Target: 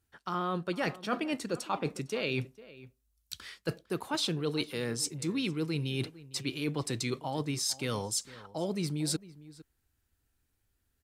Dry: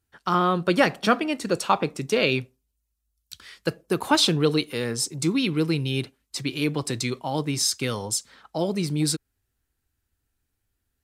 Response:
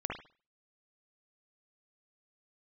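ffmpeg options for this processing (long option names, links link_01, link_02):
-filter_complex "[0:a]areverse,acompressor=threshold=-30dB:ratio=5,areverse,asplit=2[link_01][link_02];[link_02]adelay=454.8,volume=-18dB,highshelf=frequency=4000:gain=-10.2[link_03];[link_01][link_03]amix=inputs=2:normalize=0"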